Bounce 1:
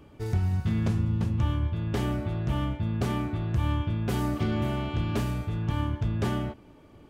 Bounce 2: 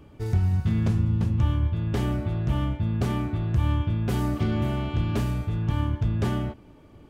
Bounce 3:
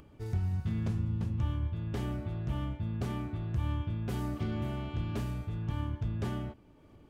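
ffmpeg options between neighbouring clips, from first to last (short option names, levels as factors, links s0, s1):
-af "lowshelf=f=190:g=4.5"
-af "acompressor=mode=upward:threshold=0.00794:ratio=2.5,volume=0.355"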